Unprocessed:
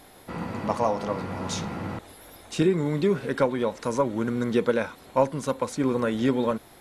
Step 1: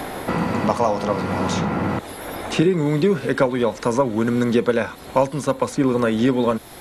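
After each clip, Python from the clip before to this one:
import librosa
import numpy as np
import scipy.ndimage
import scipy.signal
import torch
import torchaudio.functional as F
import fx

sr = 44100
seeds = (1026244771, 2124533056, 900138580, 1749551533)

y = fx.band_squash(x, sr, depth_pct=70)
y = y * librosa.db_to_amplitude(5.5)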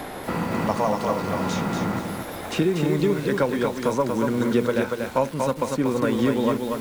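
y = fx.echo_crushed(x, sr, ms=237, feedback_pct=35, bits=6, wet_db=-3.5)
y = y * librosa.db_to_amplitude(-4.5)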